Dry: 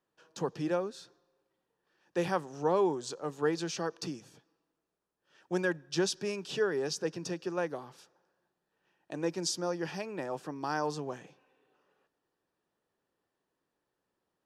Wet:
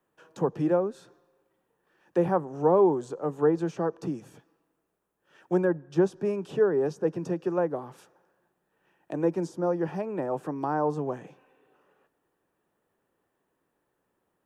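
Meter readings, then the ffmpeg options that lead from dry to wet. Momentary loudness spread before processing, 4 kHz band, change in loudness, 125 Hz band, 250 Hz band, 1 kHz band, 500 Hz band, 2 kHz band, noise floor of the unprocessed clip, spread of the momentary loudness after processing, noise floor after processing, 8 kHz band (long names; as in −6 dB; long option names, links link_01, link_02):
10 LU, below −10 dB, +6.0 dB, +7.5 dB, +7.5 dB, +5.0 dB, +7.5 dB, −3.0 dB, −85 dBFS, 10 LU, −78 dBFS, below −10 dB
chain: -filter_complex "[0:a]equalizer=frequency=4700:width=1.2:gain=-11,acrossover=split=190|1200[link_01][link_02][link_03];[link_03]acompressor=threshold=-59dB:ratio=6[link_04];[link_01][link_02][link_04]amix=inputs=3:normalize=0,volume=7.5dB"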